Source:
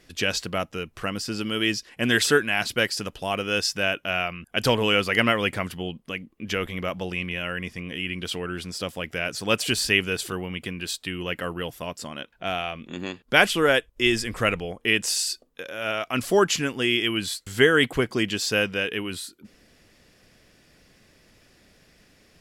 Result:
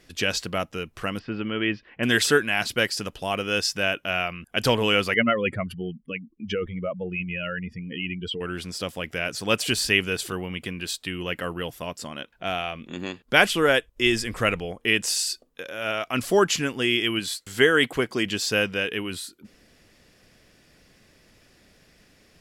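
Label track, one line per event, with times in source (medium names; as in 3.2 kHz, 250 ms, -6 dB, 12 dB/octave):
1.190000	2.030000	low-pass 2.7 kHz 24 dB/octave
5.140000	8.410000	spectral contrast enhancement exponent 2.2
17.190000	18.260000	bass shelf 120 Hz -10 dB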